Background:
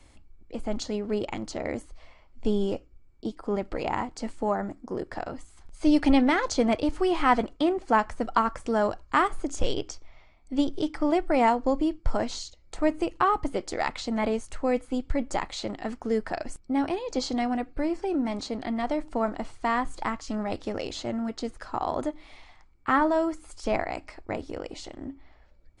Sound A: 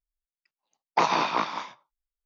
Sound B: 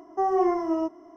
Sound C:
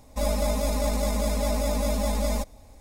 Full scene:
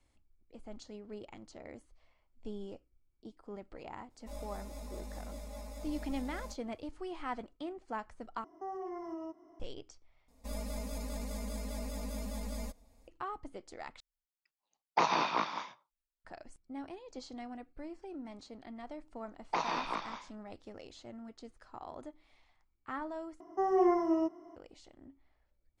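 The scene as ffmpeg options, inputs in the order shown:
ffmpeg -i bed.wav -i cue0.wav -i cue1.wav -i cue2.wav -filter_complex "[3:a]asplit=2[link_01][link_02];[2:a]asplit=2[link_03][link_04];[1:a]asplit=2[link_05][link_06];[0:a]volume=-17.5dB[link_07];[link_01]flanger=delay=20:depth=2.4:speed=1[link_08];[link_03]alimiter=level_in=0.5dB:limit=-24dB:level=0:latency=1:release=157,volume=-0.5dB[link_09];[link_02]aecho=1:1:4.3:0.57[link_10];[link_04]aecho=1:1:5.8:0.31[link_11];[link_07]asplit=5[link_12][link_13][link_14][link_15][link_16];[link_12]atrim=end=8.444[link_17];[link_09]atrim=end=1.16,asetpts=PTS-STARTPTS,volume=-10.5dB[link_18];[link_13]atrim=start=9.596:end=10.284[link_19];[link_10]atrim=end=2.8,asetpts=PTS-STARTPTS,volume=-15.5dB[link_20];[link_14]atrim=start=13.076:end=14.004[link_21];[link_05]atrim=end=2.25,asetpts=PTS-STARTPTS,volume=-6dB[link_22];[link_15]atrim=start=16.246:end=23.404[link_23];[link_11]atrim=end=1.16,asetpts=PTS-STARTPTS,volume=-5.5dB[link_24];[link_16]atrim=start=24.556[link_25];[link_08]atrim=end=2.8,asetpts=PTS-STARTPTS,volume=-18dB,afade=type=in:duration=0.004:curve=hsin,afade=type=out:start_time=2.796:duration=0.004:curve=hsin,adelay=4100[link_26];[link_06]atrim=end=2.25,asetpts=PTS-STARTPTS,volume=-11dB,afade=type=in:duration=0.004:curve=hsin,afade=type=out:start_time=2.246:duration=0.004:curve=hsin,adelay=18560[link_27];[link_17][link_18]acrossfade=duration=0.004:curve1=hsin:curve2=hsin[link_28];[link_28][link_19]acrossfade=duration=0.004:curve1=hsin:curve2=hsin[link_29];[link_29][link_20]acrossfade=duration=0.004:curve1=hsin:curve2=hsin[link_30];[link_30][link_21]acrossfade=duration=0.004:curve1=hsin:curve2=hsin[link_31];[link_31][link_22]acrossfade=duration=0.004:curve1=hsin:curve2=hsin[link_32];[link_32][link_23]acrossfade=duration=0.004:curve1=hsin:curve2=hsin[link_33];[link_33][link_24]acrossfade=duration=0.004:curve1=hsin:curve2=hsin[link_34];[link_34][link_25]acrossfade=duration=0.004:curve1=hsin:curve2=hsin[link_35];[link_35][link_26][link_27]amix=inputs=3:normalize=0" out.wav

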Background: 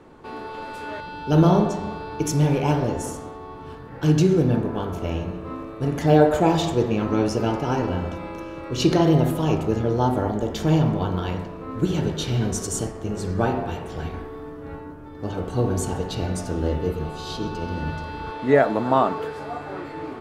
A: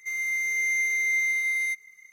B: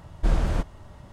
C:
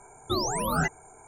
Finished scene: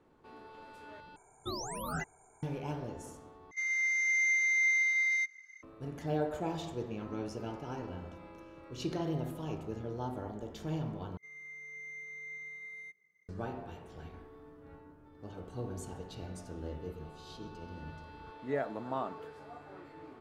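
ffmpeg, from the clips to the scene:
ffmpeg -i bed.wav -i cue0.wav -i cue1.wav -i cue2.wav -filter_complex "[1:a]asplit=2[link_01][link_02];[0:a]volume=-17.5dB[link_03];[link_01]highpass=370,equalizer=frequency=380:width_type=q:width=4:gain=-10,equalizer=frequency=550:width_type=q:width=4:gain=-4,equalizer=frequency=820:width_type=q:width=4:gain=-6,equalizer=frequency=1600:width_type=q:width=4:gain=10,equalizer=frequency=5200:width_type=q:width=4:gain=8,lowpass=frequency=6500:width=0.5412,lowpass=frequency=6500:width=1.3066[link_04];[link_02]bandpass=frequency=250:width_type=q:width=1.1:csg=0[link_05];[link_03]asplit=4[link_06][link_07][link_08][link_09];[link_06]atrim=end=1.164[link_10];[3:a]atrim=end=1.27,asetpts=PTS-STARTPTS,volume=-11dB[link_11];[link_07]atrim=start=2.426:end=3.514[link_12];[link_04]atrim=end=2.12,asetpts=PTS-STARTPTS,volume=-5dB[link_13];[link_08]atrim=start=5.626:end=11.174[link_14];[link_05]atrim=end=2.12,asetpts=PTS-STARTPTS,volume=-1dB[link_15];[link_09]atrim=start=13.286[link_16];[link_10][link_11]acrossfade=duration=0.004:curve1=hsin:curve2=hsin[link_17];[link_17][link_12]acrossfade=duration=0.004:curve1=hsin:curve2=hsin[link_18];[link_18][link_13]acrossfade=duration=0.004:curve1=hsin:curve2=hsin[link_19];[link_19][link_14]acrossfade=duration=0.004:curve1=hsin:curve2=hsin[link_20];[link_20][link_15]acrossfade=duration=0.004:curve1=hsin:curve2=hsin[link_21];[link_21][link_16]acrossfade=duration=0.004:curve1=hsin:curve2=hsin" out.wav

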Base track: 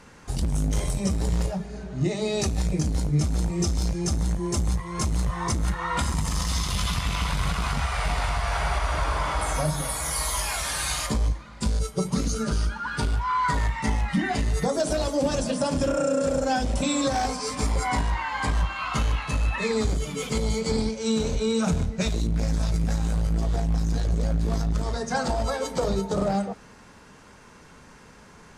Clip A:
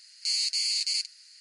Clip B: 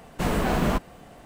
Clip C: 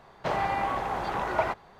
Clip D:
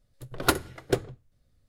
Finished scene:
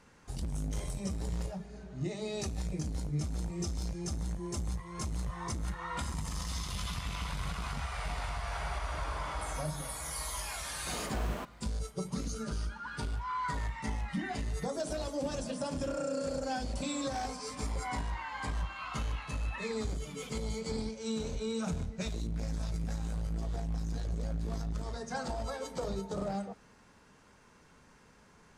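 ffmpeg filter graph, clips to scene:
ffmpeg -i bed.wav -i cue0.wav -i cue1.wav -filter_complex "[0:a]volume=-11dB[link_01];[2:a]highpass=frequency=300:poles=1[link_02];[1:a]acompressor=threshold=-43dB:ratio=6:attack=3.2:release=140:knee=1:detection=peak[link_03];[link_02]atrim=end=1.25,asetpts=PTS-STARTPTS,volume=-13dB,afade=type=in:duration=0.004:curve=hsin,afade=type=out:start_time=1.246:duration=0.004:curve=hsin,adelay=10670[link_04];[link_03]atrim=end=1.4,asetpts=PTS-STARTPTS,volume=-9.5dB,afade=type=in:duration=0.004:curve=hsin,afade=type=out:start_time=1.396:duration=0.004:curve=hsin,adelay=15900[link_05];[link_01][link_04][link_05]amix=inputs=3:normalize=0" out.wav

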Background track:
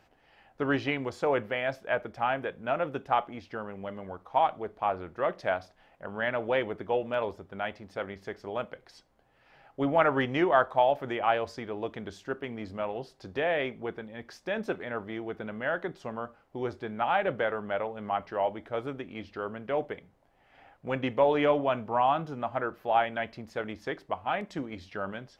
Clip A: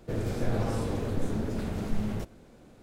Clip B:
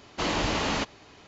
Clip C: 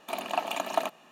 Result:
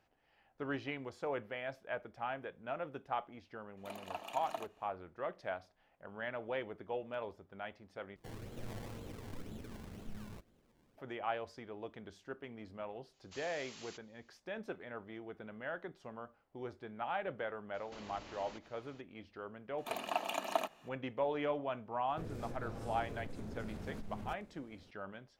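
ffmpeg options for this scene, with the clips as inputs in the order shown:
ffmpeg -i bed.wav -i cue0.wav -i cue1.wav -i cue2.wav -filter_complex "[3:a]asplit=2[link_01][link_02];[1:a]asplit=2[link_03][link_04];[2:a]asplit=2[link_05][link_06];[0:a]volume=-11.5dB[link_07];[link_03]acrusher=samples=24:mix=1:aa=0.000001:lfo=1:lforange=24:lforate=2[link_08];[link_05]aderivative[link_09];[link_06]acompressor=threshold=-39dB:ratio=6:attack=3.2:release=140:knee=1:detection=peak[link_10];[link_04]acompressor=threshold=-30dB:ratio=6:attack=3.2:release=140:knee=1:detection=peak[link_11];[link_07]asplit=2[link_12][link_13];[link_12]atrim=end=8.164[link_14];[link_08]atrim=end=2.82,asetpts=PTS-STARTPTS,volume=-17dB[link_15];[link_13]atrim=start=10.976[link_16];[link_01]atrim=end=1.11,asetpts=PTS-STARTPTS,volume=-15dB,afade=type=in:duration=0.004:curve=hsin,afade=type=out:start_time=1.106:duration=0.004:curve=hsin,adelay=166257S[link_17];[link_09]atrim=end=1.27,asetpts=PTS-STARTPTS,volume=-15dB,afade=type=in:duration=0.004:curve=hsin,afade=type=out:start_time=1.266:duration=0.004:curve=hsin,adelay=13130[link_18];[link_10]atrim=end=1.27,asetpts=PTS-STARTPTS,volume=-11dB,afade=type=in:duration=0.004:curve=hsin,afade=type=out:start_time=1.266:duration=0.004:curve=hsin,adelay=17740[link_19];[link_02]atrim=end=1.11,asetpts=PTS-STARTPTS,volume=-6.5dB,afade=type=in:duration=0.004:curve=hsin,afade=type=out:start_time=1.106:duration=0.004:curve=hsin,adelay=19780[link_20];[link_11]atrim=end=2.82,asetpts=PTS-STARTPTS,volume=-10dB,afade=type=in:duration=0.004:curve=hsin,afade=type=out:start_time=2.816:duration=0.004:curve=hsin,adelay=22090[link_21];[link_14][link_15]acrossfade=duration=0.004:curve1=hsin:curve2=hsin[link_22];[link_22][link_16]acrossfade=duration=0.004:curve1=hsin:curve2=hsin[link_23];[link_23][link_17][link_18][link_19][link_20][link_21]amix=inputs=6:normalize=0" out.wav

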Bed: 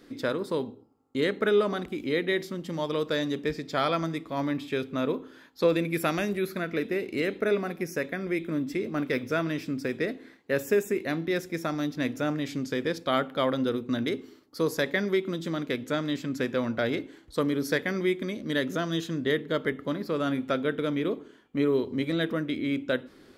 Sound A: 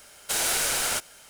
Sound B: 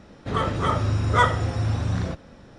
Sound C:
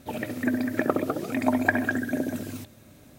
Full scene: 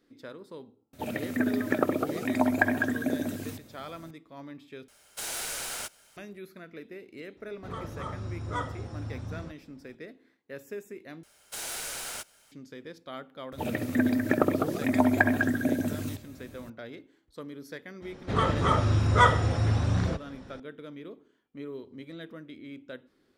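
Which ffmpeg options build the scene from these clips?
ffmpeg -i bed.wav -i cue0.wav -i cue1.wav -i cue2.wav -filter_complex "[3:a]asplit=2[link_01][link_02];[1:a]asplit=2[link_03][link_04];[2:a]asplit=2[link_05][link_06];[0:a]volume=-15dB[link_07];[link_05]equalizer=frequency=2400:width_type=o:width=1.4:gain=-4.5[link_08];[link_02]lowshelf=frequency=120:gain=8.5[link_09];[link_07]asplit=3[link_10][link_11][link_12];[link_10]atrim=end=4.884[link_13];[link_03]atrim=end=1.29,asetpts=PTS-STARTPTS,volume=-9.5dB[link_14];[link_11]atrim=start=6.166:end=11.234[link_15];[link_04]atrim=end=1.29,asetpts=PTS-STARTPTS,volume=-11dB[link_16];[link_12]atrim=start=12.516[link_17];[link_01]atrim=end=3.18,asetpts=PTS-STARTPTS,volume=-1.5dB,afade=type=in:duration=0.004:curve=hsin,afade=type=out:start_time=3.176:duration=0.004:curve=hsin,adelay=930[link_18];[link_08]atrim=end=2.58,asetpts=PTS-STARTPTS,volume=-13.5dB,afade=type=in:duration=0.004:curve=hsin,afade=type=out:start_time=2.576:duration=0.004:curve=hsin,adelay=7370[link_19];[link_09]atrim=end=3.18,asetpts=PTS-STARTPTS,volume=-0.5dB,afade=type=in:duration=0.004:curve=hsin,afade=type=out:start_time=3.176:duration=0.004:curve=hsin,adelay=13520[link_20];[link_06]atrim=end=2.58,asetpts=PTS-STARTPTS,volume=-1dB,afade=type=in:duration=0.004:curve=hsin,afade=type=out:start_time=2.576:duration=0.004:curve=hsin,adelay=18020[link_21];[link_13][link_14]acrossfade=duration=0.004:curve1=hsin:curve2=hsin[link_22];[link_22][link_15]acrossfade=duration=0.004:curve1=hsin:curve2=hsin[link_23];[link_23][link_16]acrossfade=duration=0.004:curve1=hsin:curve2=hsin[link_24];[link_24][link_17]acrossfade=duration=0.004:curve1=hsin:curve2=hsin[link_25];[link_25][link_18][link_19][link_20][link_21]amix=inputs=5:normalize=0" out.wav

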